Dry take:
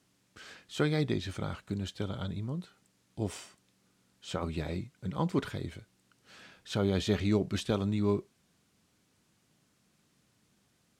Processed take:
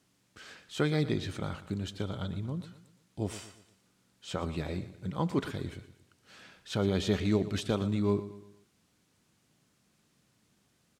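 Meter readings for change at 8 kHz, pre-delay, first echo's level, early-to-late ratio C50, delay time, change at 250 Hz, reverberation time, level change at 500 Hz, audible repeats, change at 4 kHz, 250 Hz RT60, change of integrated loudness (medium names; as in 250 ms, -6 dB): 0.0 dB, no reverb, -14.5 dB, no reverb, 118 ms, +0.5 dB, no reverb, +0.5 dB, 3, 0.0 dB, no reverb, +0.5 dB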